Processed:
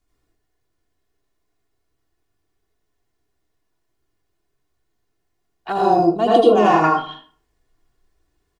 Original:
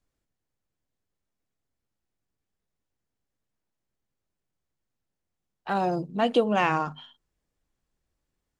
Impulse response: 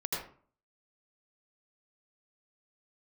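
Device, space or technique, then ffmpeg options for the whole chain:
microphone above a desk: -filter_complex "[0:a]aecho=1:1:2.8:0.58[link_01];[1:a]atrim=start_sample=2205[link_02];[link_01][link_02]afir=irnorm=-1:irlink=0,asettb=1/sr,asplit=3[link_03][link_04][link_05];[link_03]atrim=end=5.724[link_06];[link_04]atrim=start=5.72:end=6.84,asetpts=PTS-STARTPTS,afade=type=in:duration=0.004:curve=qsin,afade=type=out:start_time=1.116:duration=0.004:curve=qsin,equalizer=frequency=2000:width_type=o:width=0.93:gain=-13.5[link_07];[link_05]atrim=start=6.836[link_08];[link_06][link_07]acrossfade=duration=0.004:curve1=hsin:curve2=qsin[link_09];[link_09][link_08]acrossfade=duration=0.004:curve1=qsin:curve2=hsin,volume=5.5dB"

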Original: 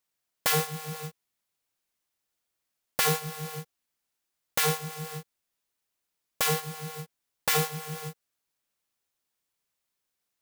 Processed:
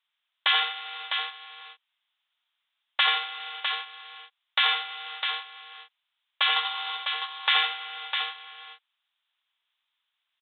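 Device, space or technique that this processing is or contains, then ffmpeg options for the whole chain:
musical greeting card: -filter_complex "[0:a]aresample=8000,aresample=44100,highpass=frequency=880:width=0.5412,highpass=frequency=880:width=1.3066,equalizer=frequency=3400:width_type=o:width=0.59:gain=9.5,asettb=1/sr,asplit=3[link_01][link_02][link_03];[link_01]atrim=end=6.564[link_04];[link_02]atrim=start=6.56:end=6.97,asetpts=PTS-STARTPTS,afade=type=in:duration=0.004:curve=qsin,afade=type=out:start_time=0.406:duration=0.004:curve=qsin,equalizer=frequency=125:width_type=o:width=1:gain=10,equalizer=frequency=1000:width_type=o:width=1:gain=10,equalizer=frequency=4000:width_type=o:width=1:gain=8[link_05];[link_03]atrim=start=6.966[link_06];[link_04][link_05]acrossfade=duration=0.004:curve1=hsin:curve2=qsin[link_07];[link_07][link_06]acrossfade=duration=0.004:curve1=qsin:curve2=hsin,aecho=1:1:85|654:0.531|0.501,volume=4dB"

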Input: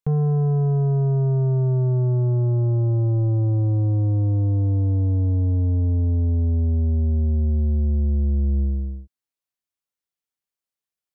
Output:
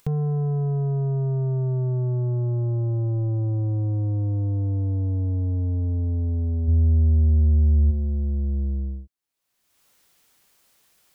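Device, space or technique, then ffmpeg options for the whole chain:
upward and downward compression: -filter_complex "[0:a]acompressor=mode=upward:threshold=-39dB:ratio=2.5,acompressor=threshold=-23dB:ratio=6,asplit=3[link_01][link_02][link_03];[link_01]afade=type=out:start_time=6.67:duration=0.02[link_04];[link_02]lowshelf=frequency=95:gain=11.5,afade=type=in:start_time=6.67:duration=0.02,afade=type=out:start_time=7.9:duration=0.02[link_05];[link_03]afade=type=in:start_time=7.9:duration=0.02[link_06];[link_04][link_05][link_06]amix=inputs=3:normalize=0"

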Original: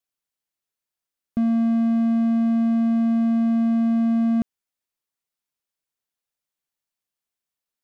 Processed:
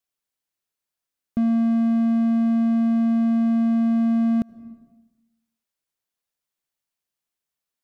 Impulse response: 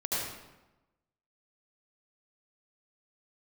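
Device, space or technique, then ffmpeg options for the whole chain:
ducked reverb: -filter_complex "[0:a]asplit=3[link_01][link_02][link_03];[1:a]atrim=start_sample=2205[link_04];[link_02][link_04]afir=irnorm=-1:irlink=0[link_05];[link_03]apad=whole_len=345449[link_06];[link_05][link_06]sidechaincompress=threshold=-34dB:ratio=5:attack=16:release=269,volume=-17.5dB[link_07];[link_01][link_07]amix=inputs=2:normalize=0"

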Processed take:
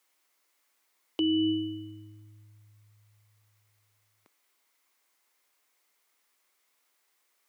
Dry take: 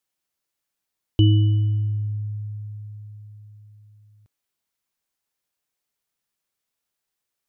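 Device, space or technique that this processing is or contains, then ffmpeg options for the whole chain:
laptop speaker: -af "highpass=frequency=270:width=0.5412,highpass=frequency=270:width=1.3066,equalizer=frequency=1100:width_type=o:width=0.58:gain=5,equalizer=frequency=2100:width_type=o:width=0.27:gain=7,alimiter=level_in=4.5dB:limit=-24dB:level=0:latency=1,volume=-4.5dB,volume=8.5dB"

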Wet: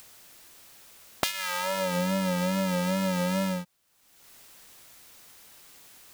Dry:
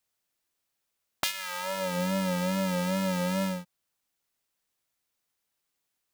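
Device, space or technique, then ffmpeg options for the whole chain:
upward and downward compression: -af "acompressor=mode=upward:threshold=-44dB:ratio=2.5,acompressor=threshold=-35dB:ratio=3,volume=9dB"

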